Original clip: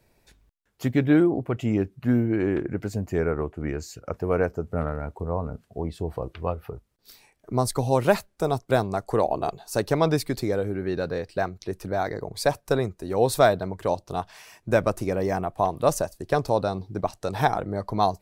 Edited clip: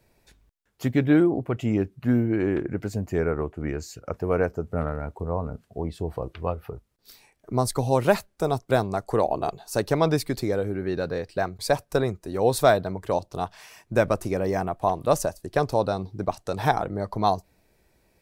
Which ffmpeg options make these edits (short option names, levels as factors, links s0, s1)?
-filter_complex "[0:a]asplit=2[s0][s1];[s0]atrim=end=11.592[s2];[s1]atrim=start=12.348[s3];[s2][s3]acrossfade=d=0.004:c1=hsin:c2=hsin"